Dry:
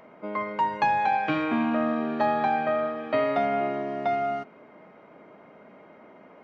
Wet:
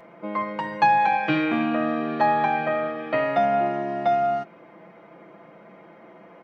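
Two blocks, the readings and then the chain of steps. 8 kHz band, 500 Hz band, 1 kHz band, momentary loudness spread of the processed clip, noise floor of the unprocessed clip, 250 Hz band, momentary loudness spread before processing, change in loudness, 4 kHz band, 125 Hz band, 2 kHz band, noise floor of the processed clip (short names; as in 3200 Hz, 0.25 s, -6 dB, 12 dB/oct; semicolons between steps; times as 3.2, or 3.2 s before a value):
n/a, +2.5 dB, +3.5 dB, 9 LU, -52 dBFS, +2.0 dB, 7 LU, +3.0 dB, +3.5 dB, +4.5 dB, +4.0 dB, -49 dBFS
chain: comb 5.9 ms, depth 69%; gain +1.5 dB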